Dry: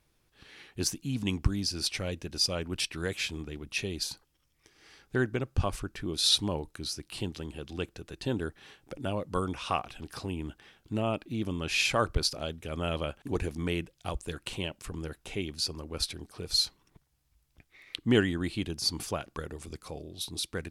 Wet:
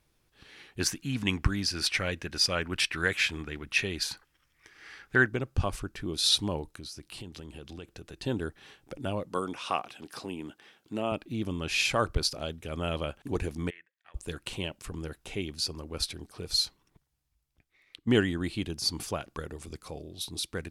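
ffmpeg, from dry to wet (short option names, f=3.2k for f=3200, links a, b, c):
-filter_complex "[0:a]asettb=1/sr,asplit=3[a][b][c];[a]atrim=end=0.794[d];[b]atrim=start=0.79:end=5.28,asetpts=PTS-STARTPTS,afade=t=in:d=0.004:c=qsin,afade=t=out:st=4.486:d=0.004:c=qsin,equalizer=f=1.7k:w=1:g=12[e];[c]atrim=start=5.276[f];[d][e]acrossfade=d=0.004:c1=hsin:c2=qsin[g];[g][f]acrossfade=d=0.004:c1=qsin:c2=hsin,asettb=1/sr,asplit=3[h][i][j];[h]atrim=end=6.654[k];[i]atrim=start=6.65:end=8.17,asetpts=PTS-STARTPTS,afade=t=in:d=0.004:c=qsin,afade=t=out:st=1.516:d=0.004:c=qsin,acompressor=threshold=-39dB:ratio=5:attack=3.2:release=140:knee=1:detection=peak[l];[j]atrim=start=8.166[m];[k][l]acrossfade=d=0.004:c1=hsin:c2=qsin[n];[n][m]acrossfade=d=0.004:c1=qsin:c2=hsin,asettb=1/sr,asplit=3[o][p][q];[o]atrim=end=9.284[r];[p]atrim=start=9.28:end=11.12,asetpts=PTS-STARTPTS,afade=t=in:d=0.004:c=qsin,afade=t=out:st=1.836:d=0.004:c=qsin,highpass=210[s];[q]atrim=start=11.116[t];[r][s]acrossfade=d=0.004:c1=hsin:c2=qsin[u];[u][t]acrossfade=d=0.004:c1=qsin:c2=hsin,asplit=3[v][w][x];[v]afade=t=out:st=13.69:d=0.02[y];[w]bandpass=f=1.8k:t=q:w=8.6,afade=t=in:st=13.69:d=0.02,afade=t=out:st=14.14:d=0.02[z];[x]afade=t=in:st=14.14:d=0.02[aa];[y][z][aa]amix=inputs=3:normalize=0,asplit=2[ab][ac];[ab]atrim=end=18.07,asetpts=PTS-STARTPTS,afade=t=out:st=16.52:d=1.55:c=qua:silence=0.281838[ad];[ac]atrim=start=18.07,asetpts=PTS-STARTPTS,afade=t=in:d=0.004:c=hsin:silence=0.281838[ae];[ad][ae]concat=n=2:v=0:a=1"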